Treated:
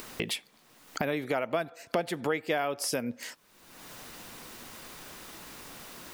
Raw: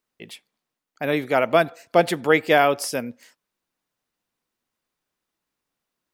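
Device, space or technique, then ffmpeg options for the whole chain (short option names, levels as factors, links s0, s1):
upward and downward compression: -af "acompressor=mode=upward:threshold=0.126:ratio=2.5,acompressor=threshold=0.0398:ratio=4"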